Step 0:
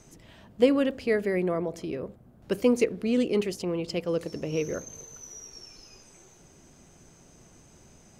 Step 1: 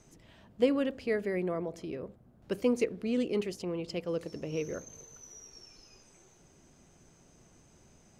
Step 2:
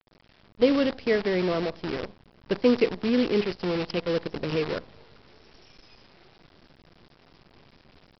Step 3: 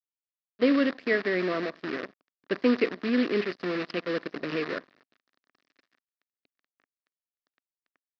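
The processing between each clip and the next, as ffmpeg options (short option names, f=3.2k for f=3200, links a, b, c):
-af "highshelf=f=10k:g=-5,volume=-5.5dB"
-af "dynaudnorm=f=370:g=3:m=7dB,aresample=11025,acrusher=bits=6:dc=4:mix=0:aa=0.000001,aresample=44100"
-af "aeval=exprs='sgn(val(0))*max(abs(val(0))-0.00531,0)':c=same,highpass=250,equalizer=f=270:t=q:w=4:g=4,equalizer=f=480:t=q:w=4:g=-4,equalizer=f=860:t=q:w=4:g=-9,equalizer=f=1.2k:t=q:w=4:g=3,equalizer=f=1.8k:t=q:w=4:g=7,equalizer=f=3.2k:t=q:w=4:g=-4,lowpass=f=4.6k:w=0.5412,lowpass=f=4.6k:w=1.3066"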